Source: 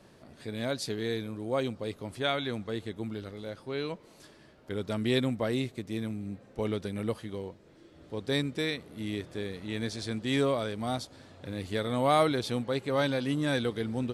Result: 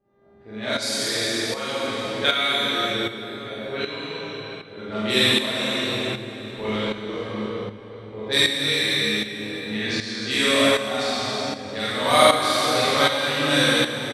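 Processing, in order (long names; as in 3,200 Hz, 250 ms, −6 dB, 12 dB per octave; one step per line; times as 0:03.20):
reverb reduction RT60 1.7 s
hum with harmonics 400 Hz, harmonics 32, −54 dBFS −4 dB per octave
tilt shelving filter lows −8.5 dB, about 1,100 Hz
double-tracking delay 47 ms −2.5 dB
low-pass that shuts in the quiet parts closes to 350 Hz, open at −26 dBFS
automatic gain control gain up to 5 dB
convolution reverb RT60 3.9 s, pre-delay 21 ms, DRR −9 dB
shaped tremolo saw up 1.3 Hz, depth 65%
level −1 dB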